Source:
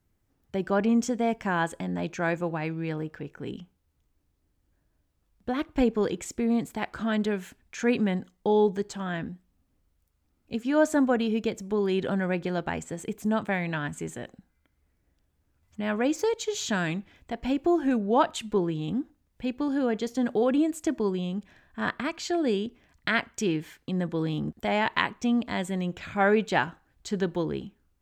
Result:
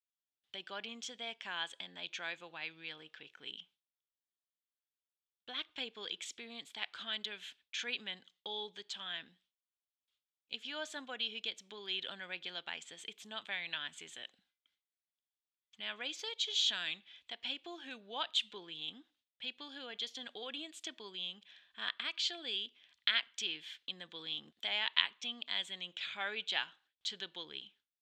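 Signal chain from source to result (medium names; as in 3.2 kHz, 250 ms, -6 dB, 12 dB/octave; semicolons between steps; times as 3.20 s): gate with hold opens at -53 dBFS; in parallel at +1 dB: compression, threshold -33 dBFS, peak gain reduction 16 dB; on the sum: band-pass filter 3.4 kHz, Q 4.6; trim +4 dB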